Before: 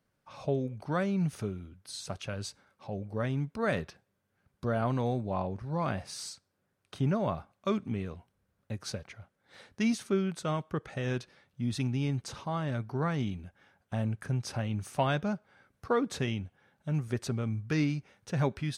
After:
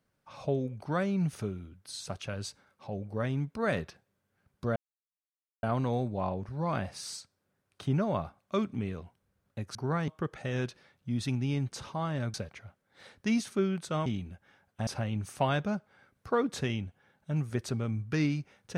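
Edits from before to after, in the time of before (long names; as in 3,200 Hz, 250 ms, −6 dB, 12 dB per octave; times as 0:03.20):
0:04.76: splice in silence 0.87 s
0:08.88–0:10.60: swap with 0:12.86–0:13.19
0:14.00–0:14.45: remove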